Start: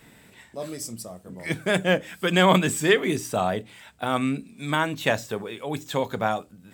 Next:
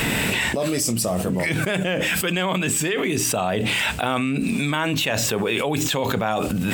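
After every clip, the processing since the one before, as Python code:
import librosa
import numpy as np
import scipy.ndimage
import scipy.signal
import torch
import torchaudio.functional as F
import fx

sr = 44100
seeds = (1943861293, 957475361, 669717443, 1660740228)

y = fx.peak_eq(x, sr, hz=2700.0, db=7.5, octaves=0.36)
y = fx.env_flatten(y, sr, amount_pct=100)
y = y * 10.0 ** (-8.5 / 20.0)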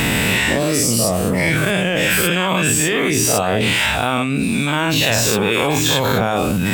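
y = fx.spec_dilate(x, sr, span_ms=120)
y = fx.peak_eq(y, sr, hz=91.0, db=3.5, octaves=1.0)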